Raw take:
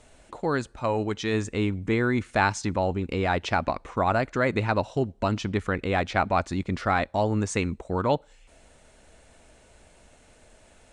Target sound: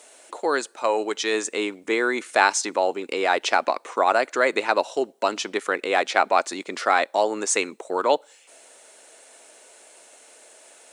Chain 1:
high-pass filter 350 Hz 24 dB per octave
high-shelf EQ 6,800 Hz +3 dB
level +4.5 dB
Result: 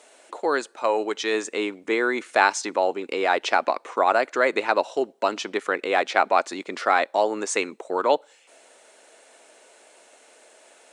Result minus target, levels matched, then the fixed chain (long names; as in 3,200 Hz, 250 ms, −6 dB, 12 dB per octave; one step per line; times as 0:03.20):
8,000 Hz band −5.0 dB
high-pass filter 350 Hz 24 dB per octave
high-shelf EQ 6,800 Hz +14 dB
level +4.5 dB